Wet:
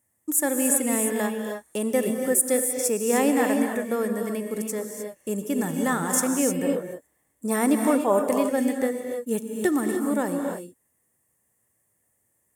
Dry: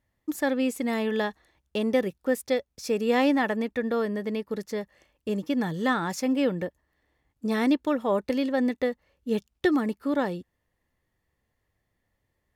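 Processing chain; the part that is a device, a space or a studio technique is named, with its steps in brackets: budget condenser microphone (HPF 120 Hz 12 dB/oct; resonant high shelf 6100 Hz +14 dB, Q 3); non-linear reverb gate 0.33 s rising, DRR 3.5 dB; 6.62–8.53 dynamic EQ 840 Hz, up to +5 dB, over -36 dBFS, Q 0.8

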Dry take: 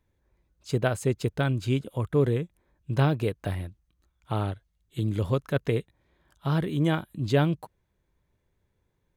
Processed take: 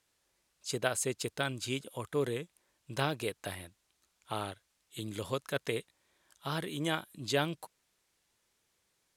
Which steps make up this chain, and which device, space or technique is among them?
turntable without a phono preamp (RIAA curve recording; white noise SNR 37 dB); LPF 10000 Hz 12 dB/oct; gain -4 dB

